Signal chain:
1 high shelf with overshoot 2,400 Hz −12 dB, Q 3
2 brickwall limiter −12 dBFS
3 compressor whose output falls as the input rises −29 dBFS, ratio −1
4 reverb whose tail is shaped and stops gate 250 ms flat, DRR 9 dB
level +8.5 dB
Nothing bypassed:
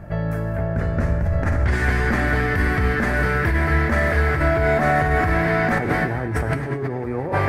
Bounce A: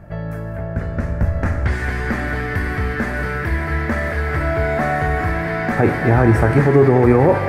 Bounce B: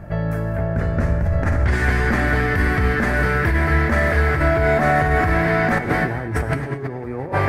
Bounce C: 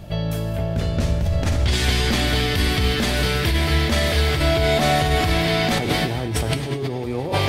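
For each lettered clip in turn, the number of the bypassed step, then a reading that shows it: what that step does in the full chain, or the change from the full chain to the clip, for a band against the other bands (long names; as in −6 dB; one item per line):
3, change in crest factor +3.0 dB
2, change in integrated loudness +1.5 LU
1, 4 kHz band +17.5 dB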